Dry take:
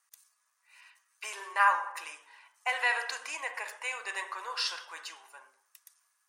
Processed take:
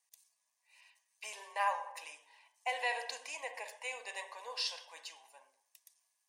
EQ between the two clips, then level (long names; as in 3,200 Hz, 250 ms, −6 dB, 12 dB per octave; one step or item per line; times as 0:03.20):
high-shelf EQ 7,100 Hz −5.5 dB
dynamic equaliser 410 Hz, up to +5 dB, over −53 dBFS, Q 1.7
phaser with its sweep stopped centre 360 Hz, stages 6
−1.5 dB